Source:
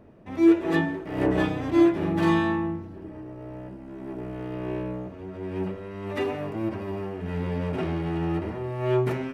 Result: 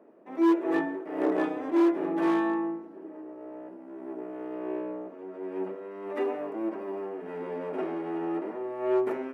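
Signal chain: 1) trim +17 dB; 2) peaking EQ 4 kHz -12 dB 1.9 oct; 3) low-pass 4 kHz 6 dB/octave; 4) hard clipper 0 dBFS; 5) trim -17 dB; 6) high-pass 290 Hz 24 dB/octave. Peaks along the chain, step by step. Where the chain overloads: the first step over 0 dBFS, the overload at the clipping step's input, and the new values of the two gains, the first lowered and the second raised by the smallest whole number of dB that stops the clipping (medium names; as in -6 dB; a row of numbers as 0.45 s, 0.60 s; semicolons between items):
+9.0 dBFS, +8.5 dBFS, +8.5 dBFS, 0.0 dBFS, -17.0 dBFS, -15.5 dBFS; step 1, 8.5 dB; step 1 +8 dB, step 5 -8 dB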